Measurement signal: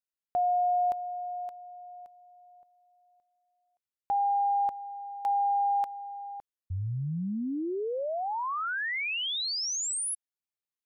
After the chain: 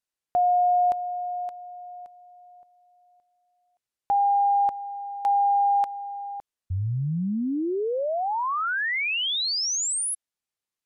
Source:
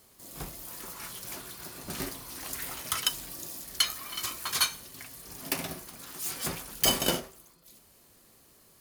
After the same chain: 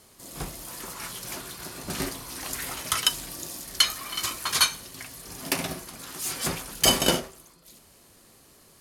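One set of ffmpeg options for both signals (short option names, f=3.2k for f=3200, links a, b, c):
-af "lowpass=12k,volume=5.5dB"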